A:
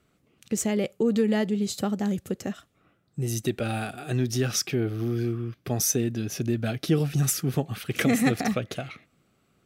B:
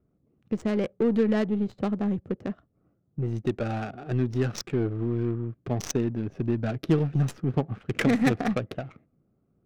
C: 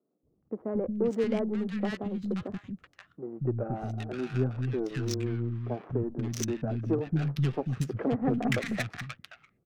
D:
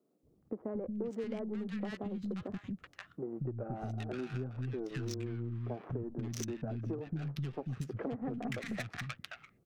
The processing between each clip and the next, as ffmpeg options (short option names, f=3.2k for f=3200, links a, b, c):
-af "aeval=exprs='0.376*(cos(1*acos(clip(val(0)/0.376,-1,1)))-cos(1*PI/2))+0.0596*(cos(2*acos(clip(val(0)/0.376,-1,1)))-cos(2*PI/2))+0.015*(cos(8*acos(clip(val(0)/0.376,-1,1)))-cos(8*PI/2))':c=same,adynamicsmooth=sensitivity=2.5:basefreq=590"
-filter_complex "[0:a]acrossover=split=240|1200[a][b][c];[a]adelay=230[d];[c]adelay=530[e];[d][b][e]amix=inputs=3:normalize=0,volume=-2dB"
-af "acompressor=threshold=-39dB:ratio=6,volume=3dB"